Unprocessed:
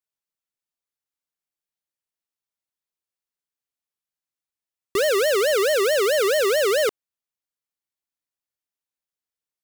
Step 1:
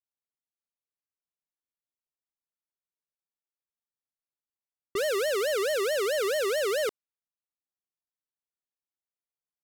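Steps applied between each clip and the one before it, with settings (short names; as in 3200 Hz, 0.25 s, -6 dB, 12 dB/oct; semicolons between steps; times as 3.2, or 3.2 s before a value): low-pass opened by the level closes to 1300 Hz, open at -21.5 dBFS; gain -7.5 dB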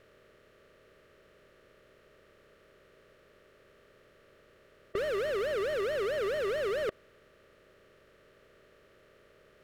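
per-bin compression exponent 0.4; tone controls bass +11 dB, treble -15 dB; gain -6.5 dB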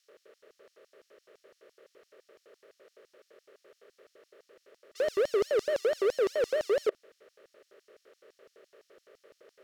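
LFO high-pass square 5.9 Hz 430–5400 Hz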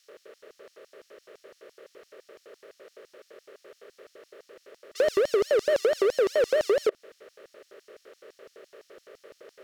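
compressor, threshold -28 dBFS, peak gain reduction 7 dB; gain +8.5 dB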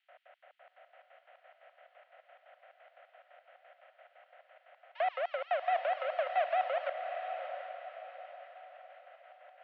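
tracing distortion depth 0.16 ms; mistuned SSB +130 Hz 550–2900 Hz; diffused feedback echo 0.736 s, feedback 42%, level -7 dB; gain -5.5 dB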